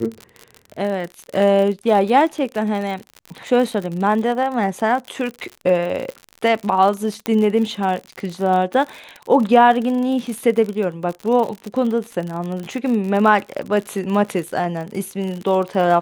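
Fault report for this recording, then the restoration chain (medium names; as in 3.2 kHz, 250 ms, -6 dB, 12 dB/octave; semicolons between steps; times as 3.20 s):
crackle 56 per s -25 dBFS
7.26 s: pop -7 dBFS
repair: de-click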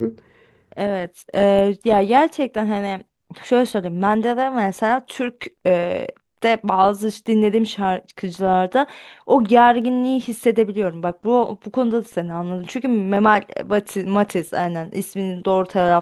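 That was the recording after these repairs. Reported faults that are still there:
7.26 s: pop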